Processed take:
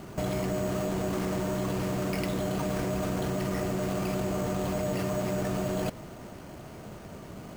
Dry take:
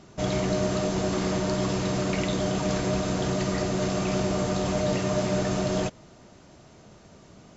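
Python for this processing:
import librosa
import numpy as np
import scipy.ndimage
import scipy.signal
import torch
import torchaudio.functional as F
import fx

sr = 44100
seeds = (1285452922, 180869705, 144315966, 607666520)

p1 = fx.over_compress(x, sr, threshold_db=-33.0, ratio=-0.5)
p2 = x + (p1 * 10.0 ** (2.5 / 20.0))
p3 = np.repeat(scipy.signal.resample_poly(p2, 1, 6), 6)[:len(p2)]
y = p3 * 10.0 ** (-6.5 / 20.0)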